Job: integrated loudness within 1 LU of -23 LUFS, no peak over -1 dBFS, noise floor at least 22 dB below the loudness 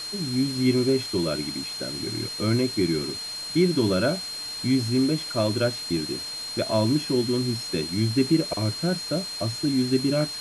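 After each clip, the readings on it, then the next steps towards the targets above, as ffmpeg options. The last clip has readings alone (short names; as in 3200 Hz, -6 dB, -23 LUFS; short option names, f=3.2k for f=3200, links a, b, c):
steady tone 4200 Hz; tone level -32 dBFS; noise floor -34 dBFS; noise floor target -47 dBFS; loudness -25.0 LUFS; peak -9.5 dBFS; loudness target -23.0 LUFS
-> -af "bandreject=f=4.2k:w=30"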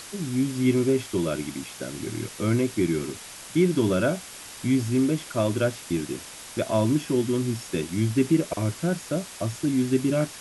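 steady tone none; noise floor -42 dBFS; noise floor target -48 dBFS
-> -af "afftdn=nr=6:nf=-42"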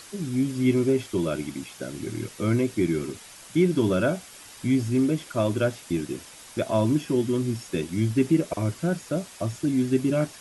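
noise floor -46 dBFS; noise floor target -48 dBFS
-> -af "afftdn=nr=6:nf=-46"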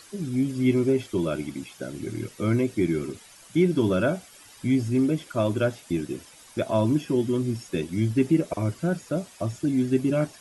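noise floor -50 dBFS; loudness -26.0 LUFS; peak -10.0 dBFS; loudness target -23.0 LUFS
-> -af "volume=3dB"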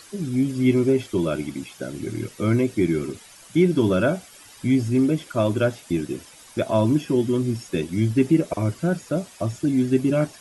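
loudness -23.0 LUFS; peak -7.0 dBFS; noise floor -47 dBFS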